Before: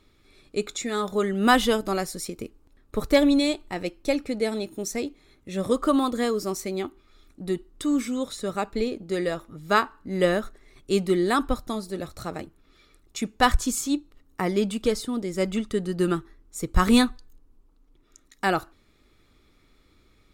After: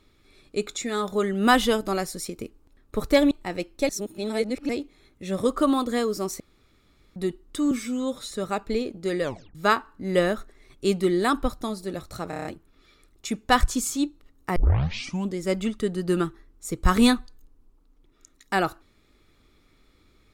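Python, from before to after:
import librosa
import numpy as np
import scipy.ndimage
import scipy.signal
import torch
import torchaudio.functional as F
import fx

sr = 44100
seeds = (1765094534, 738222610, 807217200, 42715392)

y = fx.edit(x, sr, fx.cut(start_s=3.31, length_s=0.26),
    fx.reverse_span(start_s=4.15, length_s=0.8),
    fx.room_tone_fill(start_s=6.66, length_s=0.76),
    fx.stretch_span(start_s=7.97, length_s=0.4, factor=1.5),
    fx.tape_stop(start_s=9.29, length_s=0.32),
    fx.stutter(start_s=12.36, slice_s=0.03, count=6),
    fx.tape_start(start_s=14.47, length_s=0.81), tone=tone)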